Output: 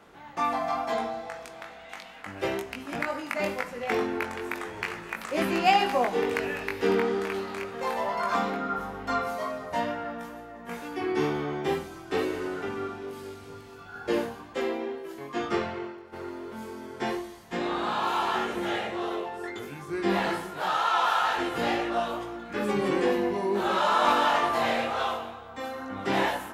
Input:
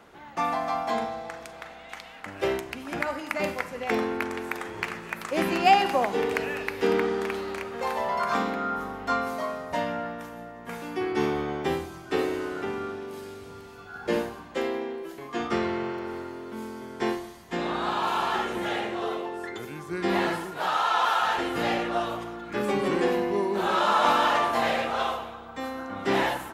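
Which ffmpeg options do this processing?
ffmpeg -i in.wav -filter_complex "[0:a]asplit=3[link_01][link_02][link_03];[link_01]afade=type=out:start_time=15.58:duration=0.02[link_04];[link_02]agate=range=-33dB:threshold=-24dB:ratio=3:detection=peak,afade=type=in:start_time=15.58:duration=0.02,afade=type=out:start_time=16.12:duration=0.02[link_05];[link_03]afade=type=in:start_time=16.12:duration=0.02[link_06];[link_04][link_05][link_06]amix=inputs=3:normalize=0,flanger=delay=19.5:depth=2:speed=2.2,volume=2dB" out.wav

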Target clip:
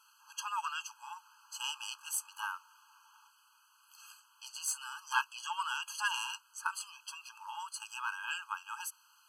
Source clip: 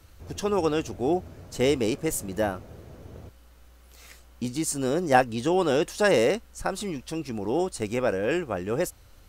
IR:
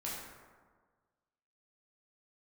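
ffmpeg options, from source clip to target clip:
-af "aeval=exprs='(tanh(4.47*val(0)+0.35)-tanh(0.35))/4.47':channel_layout=same,afftfilt=real='re*eq(mod(floor(b*sr/1024/830),2),1)':imag='im*eq(mod(floor(b*sr/1024/830),2),1)':win_size=1024:overlap=0.75"

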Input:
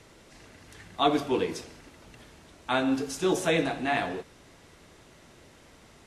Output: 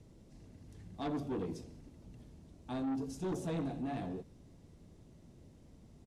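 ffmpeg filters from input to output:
ffmpeg -i in.wav -af "firequalizer=gain_entry='entry(190,0);entry(390,-9);entry(1400,-23);entry(5200,-16)':delay=0.05:min_phase=1,asoftclip=type=tanh:threshold=-33.5dB,volume=1dB" out.wav

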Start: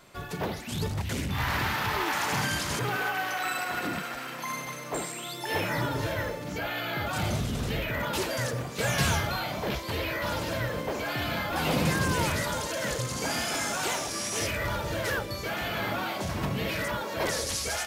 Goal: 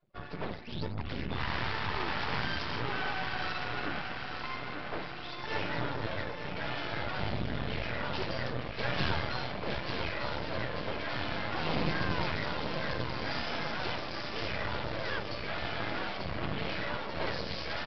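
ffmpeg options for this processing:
ffmpeg -i in.wav -af "afftdn=noise_reduction=29:noise_floor=-45,aecho=1:1:890|1780|2670|3560|4450|5340|6230:0.447|0.25|0.14|0.0784|0.0439|0.0246|0.0138,aresample=11025,aeval=exprs='max(val(0),0)':channel_layout=same,aresample=44100,acontrast=46,volume=-7dB" out.wav

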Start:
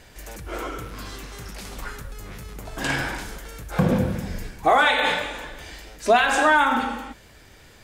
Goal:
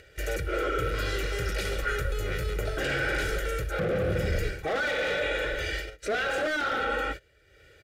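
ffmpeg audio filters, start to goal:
ffmpeg -i in.wav -filter_complex "[0:a]agate=range=-22dB:threshold=-40dB:ratio=16:detection=peak,aecho=1:1:2.1:0.82,asoftclip=type=hard:threshold=-20.5dB,acrossover=split=910[link_01][link_02];[link_01]highpass=48[link_03];[link_02]alimiter=limit=-19.5dB:level=0:latency=1:release=461[link_04];[link_03][link_04]amix=inputs=2:normalize=0,asoftclip=type=tanh:threshold=-21.5dB,asuperstop=centerf=960:order=4:qfactor=2.2,bass=frequency=250:gain=-9,treble=frequency=4000:gain=-11,areverse,acompressor=threshold=-35dB:ratio=6,areverse,lowshelf=frequency=120:gain=8,acompressor=mode=upward:threshold=-55dB:ratio=2.5,volume=9dB" out.wav

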